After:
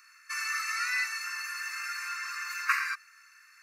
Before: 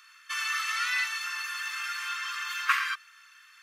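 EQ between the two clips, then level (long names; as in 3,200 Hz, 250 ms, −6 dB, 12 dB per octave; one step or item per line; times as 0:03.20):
high-pass filter 1,200 Hz 12 dB per octave
Butterworth band-reject 3,300 Hz, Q 2.1
0.0 dB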